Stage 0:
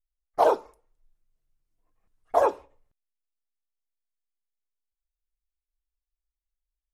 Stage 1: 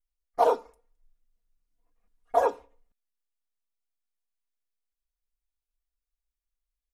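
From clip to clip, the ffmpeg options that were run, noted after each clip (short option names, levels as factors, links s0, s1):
-af "aecho=1:1:4.2:0.74,volume=0.631"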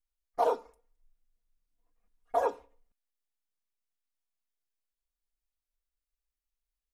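-af "alimiter=limit=0.211:level=0:latency=1:release=165,volume=0.708"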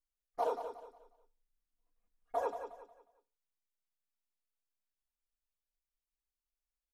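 -af "aecho=1:1:180|360|540|720:0.355|0.114|0.0363|0.0116,volume=0.447"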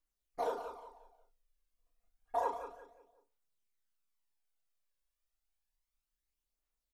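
-filter_complex "[0:a]aphaser=in_gain=1:out_gain=1:delay=1.9:decay=0.46:speed=0.3:type=triangular,asplit=2[s0][s1];[s1]adelay=36,volume=0.501[s2];[s0][s2]amix=inputs=2:normalize=0"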